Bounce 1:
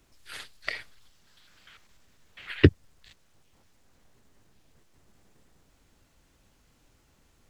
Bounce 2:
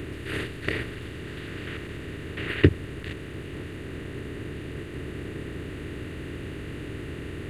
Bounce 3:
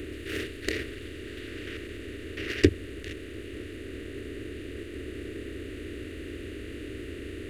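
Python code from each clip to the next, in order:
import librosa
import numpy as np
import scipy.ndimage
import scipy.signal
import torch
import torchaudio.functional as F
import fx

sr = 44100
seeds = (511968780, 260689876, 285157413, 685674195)

y1 = fx.bin_compress(x, sr, power=0.4)
y1 = fx.peak_eq(y1, sr, hz=5100.0, db=-13.5, octaves=0.46)
y1 = y1 * 10.0 ** (-1.5 / 20.0)
y2 = fx.tracing_dist(y1, sr, depth_ms=0.15)
y2 = fx.fixed_phaser(y2, sr, hz=370.0, stages=4)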